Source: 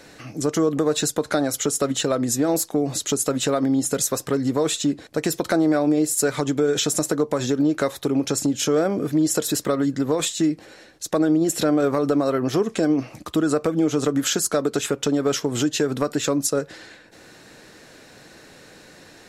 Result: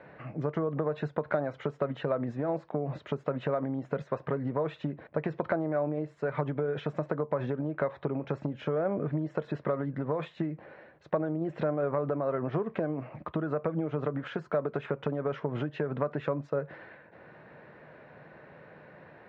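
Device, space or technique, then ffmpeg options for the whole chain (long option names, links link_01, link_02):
bass amplifier: -af "acompressor=threshold=-22dB:ratio=6,highpass=68,equalizer=frequency=150:width_type=q:width=4:gain=7,equalizer=frequency=290:width_type=q:width=4:gain=-6,equalizer=frequency=600:width_type=q:width=4:gain=6,equalizer=frequency=980:width_type=q:width=4:gain=5,lowpass=frequency=2200:width=0.5412,lowpass=frequency=2200:width=1.3066,volume=-5dB"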